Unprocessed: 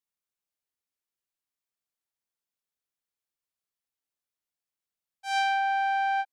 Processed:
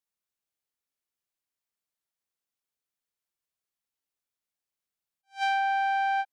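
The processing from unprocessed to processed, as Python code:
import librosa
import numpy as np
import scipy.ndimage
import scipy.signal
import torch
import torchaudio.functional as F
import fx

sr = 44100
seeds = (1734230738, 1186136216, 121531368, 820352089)

y = fx.attack_slew(x, sr, db_per_s=310.0)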